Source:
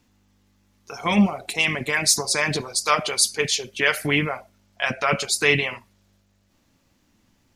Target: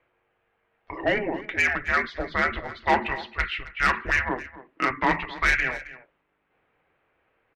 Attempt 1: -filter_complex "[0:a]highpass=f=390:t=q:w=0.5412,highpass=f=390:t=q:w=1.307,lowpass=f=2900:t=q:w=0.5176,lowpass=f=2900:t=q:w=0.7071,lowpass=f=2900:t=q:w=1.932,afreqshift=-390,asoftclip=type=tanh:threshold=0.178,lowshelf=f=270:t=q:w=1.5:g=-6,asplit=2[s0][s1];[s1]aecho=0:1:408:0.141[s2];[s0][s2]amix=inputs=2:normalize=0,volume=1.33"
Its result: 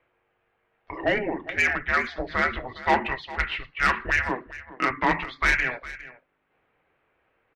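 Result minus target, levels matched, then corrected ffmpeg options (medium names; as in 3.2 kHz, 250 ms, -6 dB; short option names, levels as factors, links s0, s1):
echo 140 ms late
-filter_complex "[0:a]highpass=f=390:t=q:w=0.5412,highpass=f=390:t=q:w=1.307,lowpass=f=2900:t=q:w=0.5176,lowpass=f=2900:t=q:w=0.7071,lowpass=f=2900:t=q:w=1.932,afreqshift=-390,asoftclip=type=tanh:threshold=0.178,lowshelf=f=270:t=q:w=1.5:g=-6,asplit=2[s0][s1];[s1]aecho=0:1:268:0.141[s2];[s0][s2]amix=inputs=2:normalize=0,volume=1.33"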